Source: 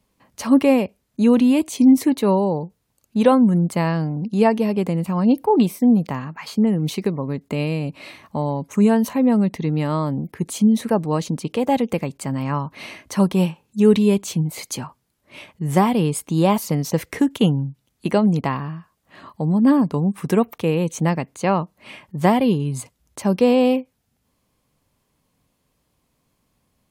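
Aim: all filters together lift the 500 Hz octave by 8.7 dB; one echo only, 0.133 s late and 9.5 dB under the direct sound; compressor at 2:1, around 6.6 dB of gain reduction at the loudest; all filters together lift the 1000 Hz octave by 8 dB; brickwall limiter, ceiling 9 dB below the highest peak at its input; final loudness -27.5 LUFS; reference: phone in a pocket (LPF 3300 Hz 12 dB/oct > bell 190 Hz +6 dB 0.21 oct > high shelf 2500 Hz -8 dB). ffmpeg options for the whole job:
-af "equalizer=f=500:t=o:g=8.5,equalizer=f=1k:t=o:g=8,acompressor=threshold=-12dB:ratio=2,alimiter=limit=-9dB:level=0:latency=1,lowpass=3.3k,equalizer=f=190:t=o:w=0.21:g=6,highshelf=f=2.5k:g=-8,aecho=1:1:133:0.335,volume=-9dB"

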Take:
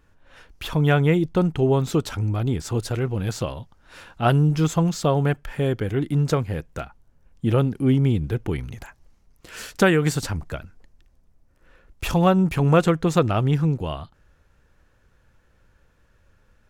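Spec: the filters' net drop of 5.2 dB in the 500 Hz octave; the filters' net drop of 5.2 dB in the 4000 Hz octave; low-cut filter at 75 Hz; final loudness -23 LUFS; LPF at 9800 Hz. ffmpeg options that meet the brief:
-af "highpass=75,lowpass=9.8k,equalizer=f=500:t=o:g=-6.5,equalizer=f=4k:t=o:g=-7,volume=0.5dB"

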